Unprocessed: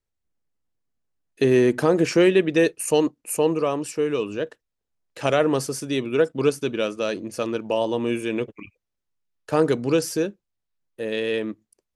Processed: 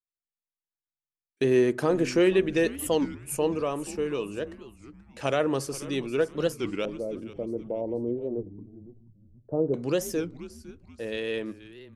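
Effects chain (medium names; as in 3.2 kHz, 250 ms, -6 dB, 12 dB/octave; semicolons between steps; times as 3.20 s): gate with hold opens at -38 dBFS; 6.85–9.74 s: inverse Chebyshev low-pass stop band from 3.7 kHz, stop band 80 dB; frequency-shifting echo 480 ms, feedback 39%, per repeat -120 Hz, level -16.5 dB; reverberation RT60 0.60 s, pre-delay 3 ms, DRR 19 dB; warped record 33 1/3 rpm, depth 250 cents; trim -5.5 dB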